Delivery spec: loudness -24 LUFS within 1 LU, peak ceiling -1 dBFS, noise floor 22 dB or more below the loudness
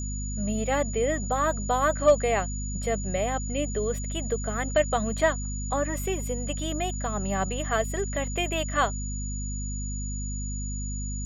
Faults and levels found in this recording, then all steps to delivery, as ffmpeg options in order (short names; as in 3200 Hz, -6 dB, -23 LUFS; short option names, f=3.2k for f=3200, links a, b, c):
hum 50 Hz; harmonics up to 250 Hz; hum level -30 dBFS; steady tone 6900 Hz; tone level -37 dBFS; loudness -28.0 LUFS; peak -9.5 dBFS; loudness target -24.0 LUFS
-> -af "bandreject=f=50:t=h:w=6,bandreject=f=100:t=h:w=6,bandreject=f=150:t=h:w=6,bandreject=f=200:t=h:w=6,bandreject=f=250:t=h:w=6"
-af "bandreject=f=6.9k:w=30"
-af "volume=4dB"